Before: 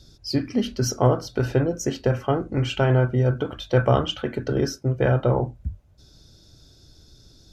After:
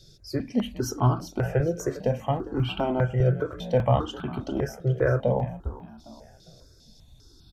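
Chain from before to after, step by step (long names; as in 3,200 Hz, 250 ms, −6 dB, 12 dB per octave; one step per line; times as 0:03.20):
dynamic equaliser 4,800 Hz, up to −7 dB, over −47 dBFS, Q 1.1
on a send: echo with shifted repeats 404 ms, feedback 39%, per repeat +48 Hz, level −16.5 dB
on the sum: step-sequenced phaser 5 Hz 260–1,900 Hz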